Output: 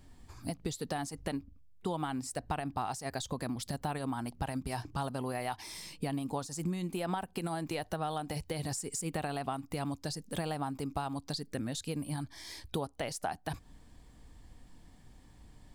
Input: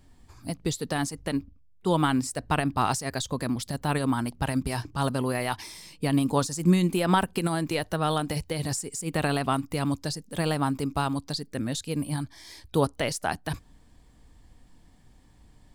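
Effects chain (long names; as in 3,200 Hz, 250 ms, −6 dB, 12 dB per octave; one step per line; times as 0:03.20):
dynamic equaliser 760 Hz, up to +8 dB, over −45 dBFS, Q 3.4
downward compressor 6 to 1, threshold −33 dBFS, peak gain reduction 17 dB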